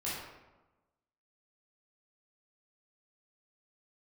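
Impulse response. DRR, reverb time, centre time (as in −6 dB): −9.0 dB, 1.1 s, 76 ms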